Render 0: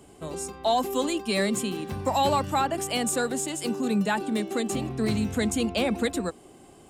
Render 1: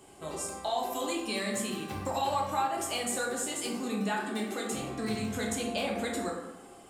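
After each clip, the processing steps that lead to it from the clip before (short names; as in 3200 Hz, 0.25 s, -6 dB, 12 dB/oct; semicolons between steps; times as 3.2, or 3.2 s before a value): low shelf 360 Hz -8.5 dB; compressor 3:1, threshold -32 dBFS, peak gain reduction 9 dB; plate-style reverb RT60 1.1 s, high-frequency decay 0.5×, DRR -2 dB; gain -2 dB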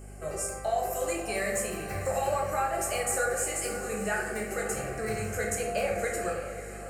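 fixed phaser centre 960 Hz, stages 6; diffused feedback echo 0.567 s, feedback 43%, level -11 dB; hum 50 Hz, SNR 14 dB; gain +5.5 dB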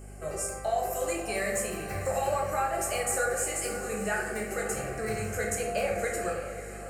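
nothing audible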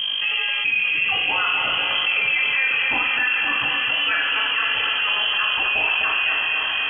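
on a send: thinning echo 0.255 s, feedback 59%, level -6.5 dB; on the sum: inverted band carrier 3200 Hz; fast leveller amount 70%; gain +5.5 dB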